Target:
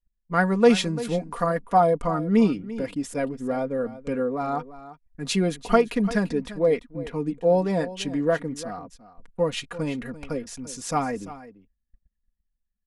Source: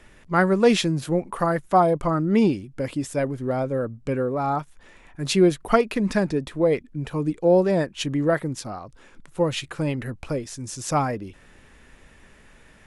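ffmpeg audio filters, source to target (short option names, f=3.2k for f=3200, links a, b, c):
-filter_complex "[0:a]anlmdn=0.158,agate=range=-23dB:threshold=-47dB:ratio=16:detection=peak,aecho=1:1:4.2:0.64,asplit=2[a][b];[b]aecho=0:1:342:0.168[c];[a][c]amix=inputs=2:normalize=0,volume=-3.5dB"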